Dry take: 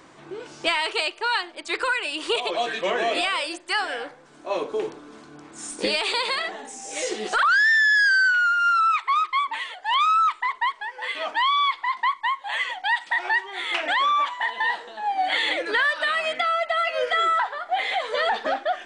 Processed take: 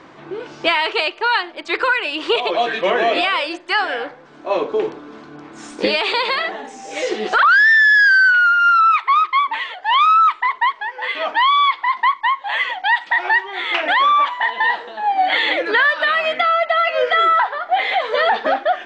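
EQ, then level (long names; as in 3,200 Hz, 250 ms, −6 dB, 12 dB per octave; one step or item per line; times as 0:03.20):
high-frequency loss of the air 160 metres
low-shelf EQ 68 Hz −7.5 dB
+8.0 dB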